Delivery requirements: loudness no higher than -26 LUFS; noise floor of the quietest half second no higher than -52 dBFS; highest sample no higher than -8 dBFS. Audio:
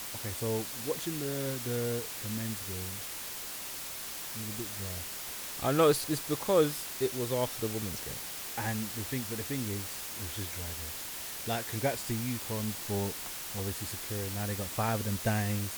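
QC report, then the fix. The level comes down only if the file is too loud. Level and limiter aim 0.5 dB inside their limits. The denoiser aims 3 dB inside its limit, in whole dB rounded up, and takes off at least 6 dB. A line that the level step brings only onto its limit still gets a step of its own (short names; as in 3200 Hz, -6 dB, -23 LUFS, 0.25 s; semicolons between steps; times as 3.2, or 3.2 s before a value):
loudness -33.0 LUFS: OK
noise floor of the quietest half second -40 dBFS: fail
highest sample -12.5 dBFS: OK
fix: denoiser 15 dB, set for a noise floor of -40 dBFS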